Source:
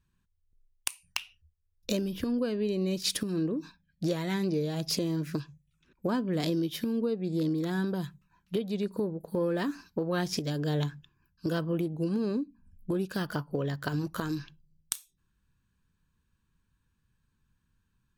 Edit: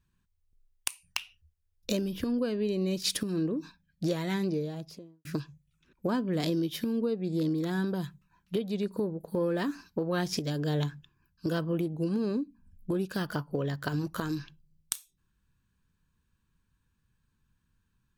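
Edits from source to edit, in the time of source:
0:04.31–0:05.25: fade out and dull

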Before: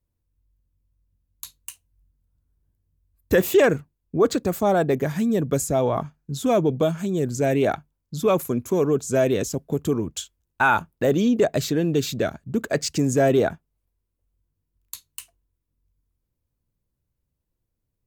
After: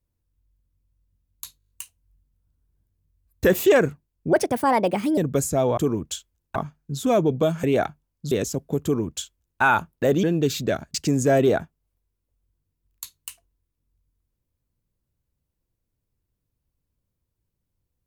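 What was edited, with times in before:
0:01.58: stutter 0.02 s, 7 plays
0:04.21–0:05.35: play speed 135%
0:07.03–0:07.52: remove
0:08.20–0:09.31: remove
0:09.83–0:10.61: duplicate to 0:05.95
0:11.23–0:11.76: remove
0:12.47–0:12.85: remove

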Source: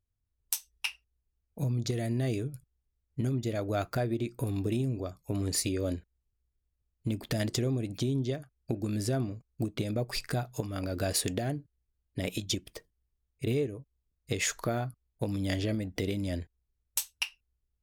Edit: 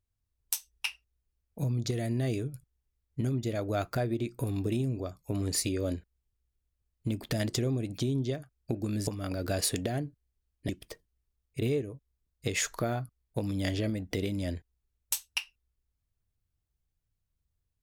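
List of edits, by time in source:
0:09.07–0:10.59: remove
0:12.21–0:12.54: remove

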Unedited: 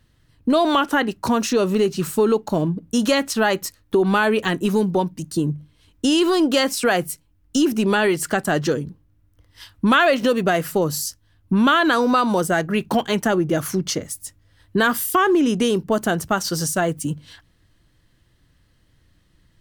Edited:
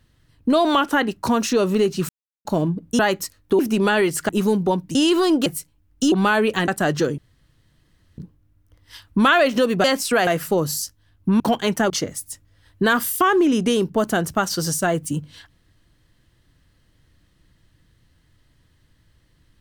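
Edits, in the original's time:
0:02.09–0:02.45: silence
0:02.99–0:03.41: remove
0:04.01–0:04.57: swap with 0:07.65–0:08.35
0:05.23–0:06.05: remove
0:06.56–0:06.99: move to 0:10.51
0:08.85: splice in room tone 1.00 s
0:11.64–0:12.86: remove
0:13.36–0:13.84: remove

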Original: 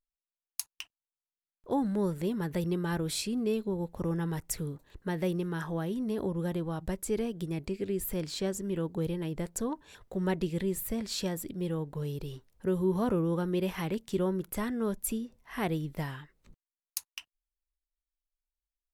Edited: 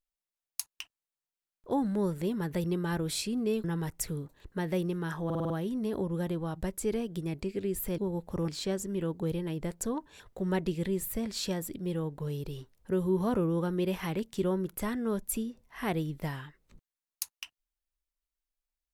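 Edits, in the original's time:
0:03.64–0:04.14: move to 0:08.23
0:05.75: stutter 0.05 s, 6 plays

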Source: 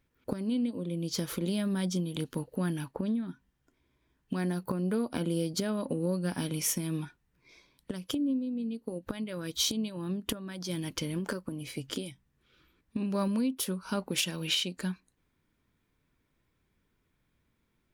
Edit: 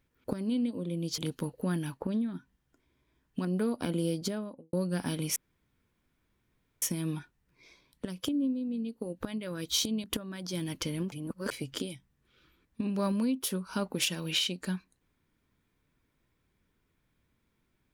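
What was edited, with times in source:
0:01.18–0:02.12: remove
0:04.39–0:04.77: remove
0:05.46–0:06.05: fade out and dull
0:06.68: splice in room tone 1.46 s
0:09.90–0:10.20: remove
0:11.28–0:11.67: reverse

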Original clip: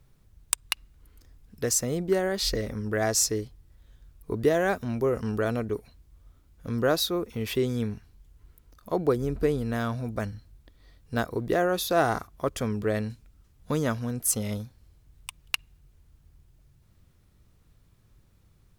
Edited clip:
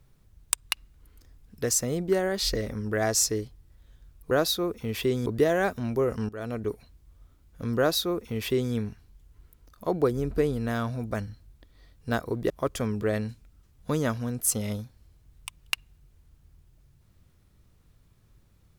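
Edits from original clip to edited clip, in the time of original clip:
0:05.34–0:05.72: fade in, from −20.5 dB
0:06.83–0:07.78: duplicate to 0:04.31
0:11.55–0:12.31: remove

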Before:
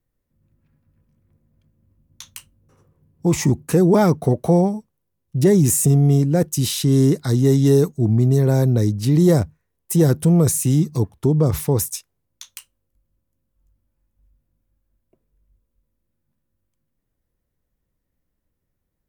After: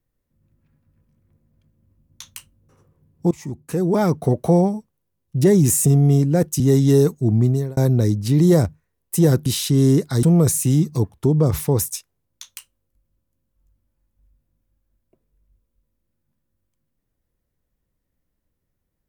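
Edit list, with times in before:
0:03.31–0:04.38: fade in, from −23 dB
0:06.60–0:07.37: move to 0:10.23
0:08.21–0:08.54: fade out

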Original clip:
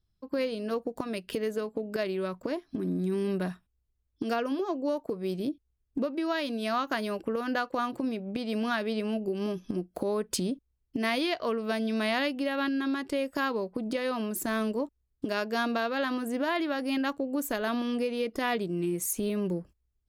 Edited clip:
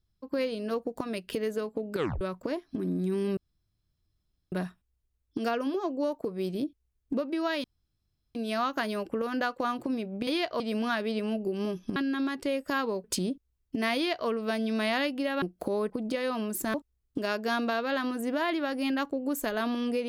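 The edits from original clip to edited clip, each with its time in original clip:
0:01.94: tape stop 0.27 s
0:03.37: splice in room tone 1.15 s
0:06.49: splice in room tone 0.71 s
0:09.77–0:10.25: swap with 0:12.63–0:13.71
0:11.16–0:11.49: duplicate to 0:08.41
0:14.55–0:14.81: remove

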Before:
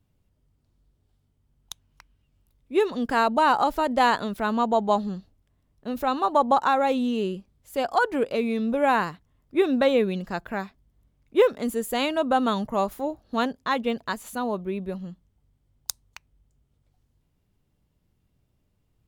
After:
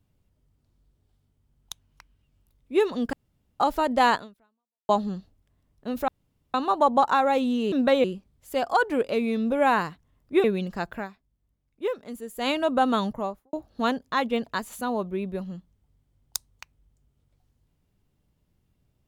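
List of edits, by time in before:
0:03.13–0:03.60: fill with room tone
0:04.15–0:04.89: fade out exponential
0:06.08: splice in room tone 0.46 s
0:09.66–0:09.98: move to 0:07.26
0:10.50–0:12.02: duck −10 dB, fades 0.12 s
0:12.55–0:13.07: fade out and dull

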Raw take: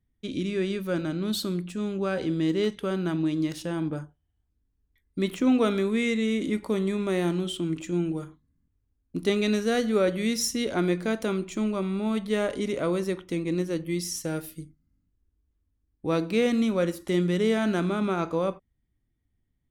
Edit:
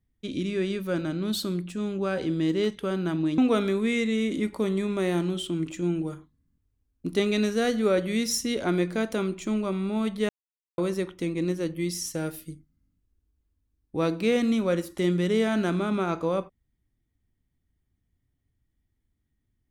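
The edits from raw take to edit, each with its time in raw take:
0:03.38–0:05.48: remove
0:12.39–0:12.88: silence

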